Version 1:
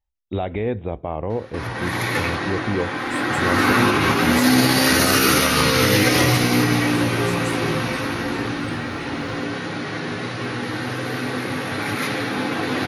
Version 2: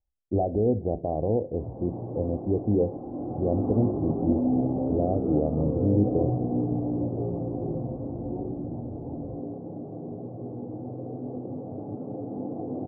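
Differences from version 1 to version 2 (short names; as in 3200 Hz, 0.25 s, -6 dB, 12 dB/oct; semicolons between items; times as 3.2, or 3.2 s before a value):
speech: send +11.5 dB; first sound -7.5 dB; master: add elliptic low-pass 710 Hz, stop band 60 dB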